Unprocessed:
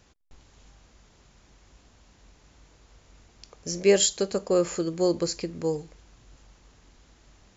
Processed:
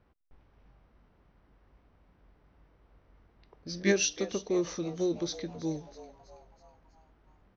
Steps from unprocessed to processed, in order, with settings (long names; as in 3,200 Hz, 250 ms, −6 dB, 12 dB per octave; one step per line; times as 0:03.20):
formants moved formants −3 semitones
low-pass that shuts in the quiet parts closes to 1,500 Hz, open at −24.5 dBFS
echo with shifted repeats 325 ms, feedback 51%, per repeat +120 Hz, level −16.5 dB
level −6 dB